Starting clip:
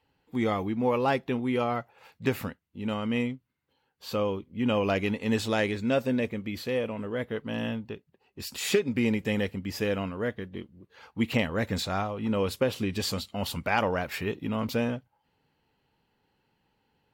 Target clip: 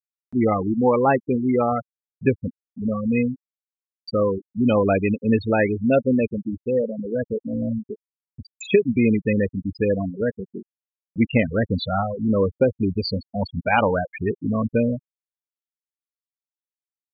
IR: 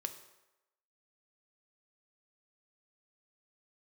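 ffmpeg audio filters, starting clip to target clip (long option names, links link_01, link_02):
-af "afftfilt=real='re*gte(hypot(re,im),0.0891)':imag='im*gte(hypot(re,im),0.0891)':win_size=1024:overlap=0.75,acompressor=mode=upward:threshold=-41dB:ratio=2.5,volume=8dB"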